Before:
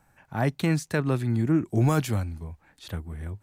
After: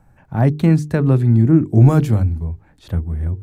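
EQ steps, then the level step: tilt shelf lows +6 dB, about 1.1 kHz; bass shelf 170 Hz +7 dB; hum notches 50/100/150/200/250/300/350/400/450 Hz; +3.0 dB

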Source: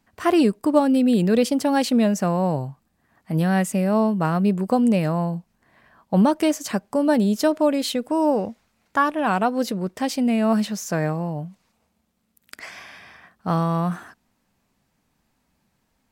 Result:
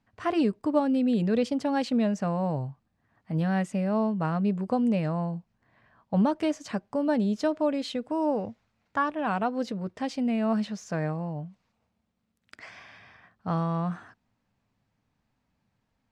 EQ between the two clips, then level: distance through air 99 m; peaking EQ 110 Hz +9.5 dB 0.37 oct; band-stop 360 Hz, Q 12; -6.5 dB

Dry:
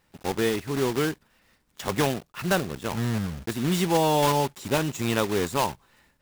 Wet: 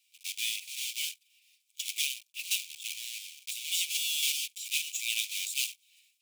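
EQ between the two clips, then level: rippled Chebyshev high-pass 2.3 kHz, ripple 3 dB; +4.0 dB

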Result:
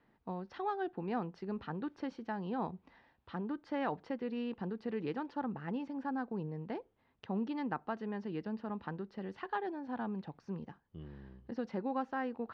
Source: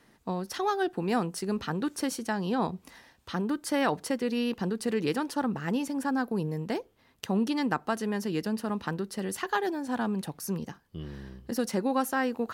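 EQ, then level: low-pass 6.6 kHz 24 dB/octave; distance through air 340 m; peaking EQ 840 Hz +3.5 dB 0.39 oct; -8.5 dB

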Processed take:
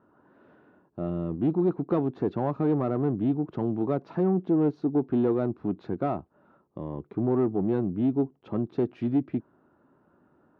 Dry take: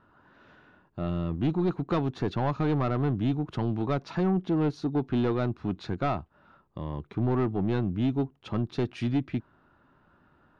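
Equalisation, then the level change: band-pass filter 370 Hz, Q 0.86; +4.0 dB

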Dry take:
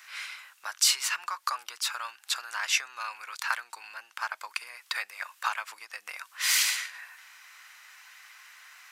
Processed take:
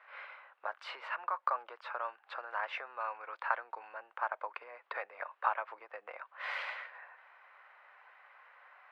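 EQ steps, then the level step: band-pass filter 530 Hz, Q 2.1; distance through air 450 m; +12.5 dB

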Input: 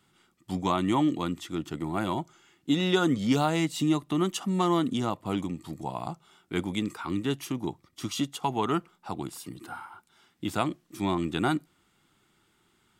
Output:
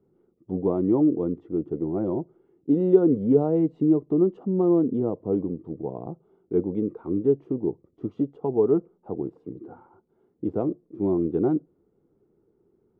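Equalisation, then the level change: resonant low-pass 450 Hz, resonance Q 4.9; 0.0 dB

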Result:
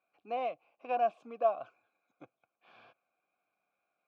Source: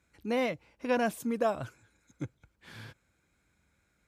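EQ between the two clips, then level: vowel filter a; band-pass 150–4800 Hz; +5.5 dB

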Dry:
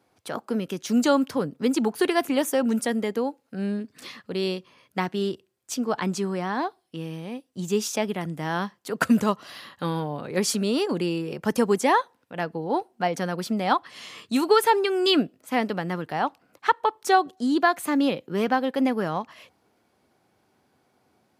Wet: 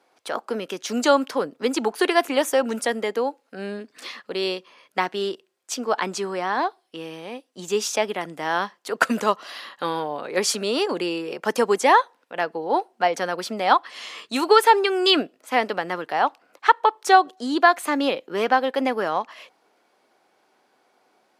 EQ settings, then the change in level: high-pass 430 Hz 12 dB/octave; treble shelf 11 kHz -11.5 dB; +5.5 dB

